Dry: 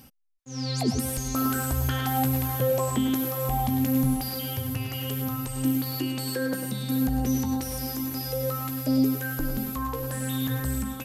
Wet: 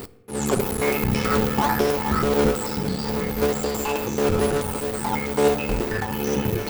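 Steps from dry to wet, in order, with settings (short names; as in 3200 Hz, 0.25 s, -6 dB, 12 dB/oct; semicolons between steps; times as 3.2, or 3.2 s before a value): cycle switcher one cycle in 3, muted; in parallel at -7.5 dB: decimation with a swept rate 31×, swing 60% 1.3 Hz; on the sum: notch 380 Hz, Q 12; reverse; upward compressor, threshold -28 dBFS; reverse; FDN reverb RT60 1.8 s, low-frequency decay 1.5×, high-frequency decay 0.4×, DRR 13.5 dB; wide varispeed 1.65×; gain +4 dB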